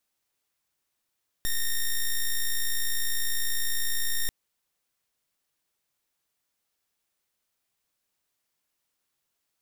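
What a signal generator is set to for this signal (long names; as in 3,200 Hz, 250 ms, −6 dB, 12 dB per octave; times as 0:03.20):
pulse wave 1,840 Hz, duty 6% −25 dBFS 2.84 s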